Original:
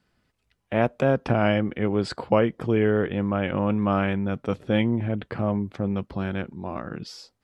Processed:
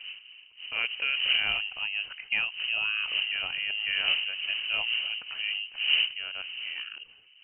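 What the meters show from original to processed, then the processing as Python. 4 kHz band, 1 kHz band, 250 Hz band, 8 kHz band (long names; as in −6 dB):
+15.5 dB, −15.0 dB, below −35 dB, can't be measured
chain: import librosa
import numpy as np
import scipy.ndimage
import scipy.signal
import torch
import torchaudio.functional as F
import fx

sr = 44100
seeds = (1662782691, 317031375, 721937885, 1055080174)

y = fx.dmg_wind(x, sr, seeds[0], corner_hz=290.0, level_db=-26.0)
y = fx.freq_invert(y, sr, carrier_hz=3000)
y = F.gain(torch.from_numpy(y), -9.0).numpy()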